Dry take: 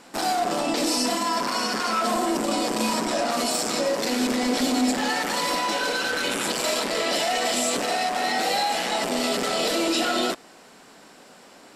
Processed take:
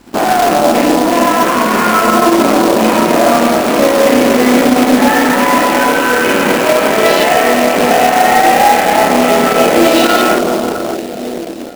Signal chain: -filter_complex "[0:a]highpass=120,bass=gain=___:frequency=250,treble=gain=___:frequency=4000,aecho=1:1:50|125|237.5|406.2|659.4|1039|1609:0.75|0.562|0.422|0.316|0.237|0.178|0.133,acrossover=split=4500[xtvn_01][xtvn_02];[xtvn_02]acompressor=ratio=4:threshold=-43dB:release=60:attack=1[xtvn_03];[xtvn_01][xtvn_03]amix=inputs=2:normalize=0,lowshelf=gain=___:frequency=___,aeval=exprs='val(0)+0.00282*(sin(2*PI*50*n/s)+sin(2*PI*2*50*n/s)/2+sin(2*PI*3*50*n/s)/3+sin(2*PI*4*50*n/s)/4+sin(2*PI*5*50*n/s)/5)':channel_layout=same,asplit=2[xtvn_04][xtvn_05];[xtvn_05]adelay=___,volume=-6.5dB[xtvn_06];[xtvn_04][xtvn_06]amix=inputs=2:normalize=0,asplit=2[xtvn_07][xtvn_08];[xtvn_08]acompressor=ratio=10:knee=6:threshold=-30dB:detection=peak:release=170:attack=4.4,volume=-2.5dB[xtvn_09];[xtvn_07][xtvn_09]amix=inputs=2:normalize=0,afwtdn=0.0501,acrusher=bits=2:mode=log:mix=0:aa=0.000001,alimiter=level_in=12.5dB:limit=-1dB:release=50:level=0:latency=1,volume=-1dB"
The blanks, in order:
-2, -3, 5, 490, 29